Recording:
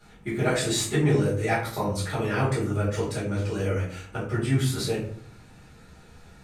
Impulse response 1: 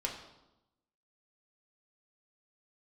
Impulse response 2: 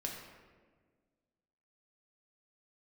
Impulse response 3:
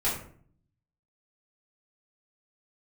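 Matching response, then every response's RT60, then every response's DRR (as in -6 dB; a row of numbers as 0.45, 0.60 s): 3; 0.95, 1.6, 0.55 s; -1.0, -1.0, -9.5 dB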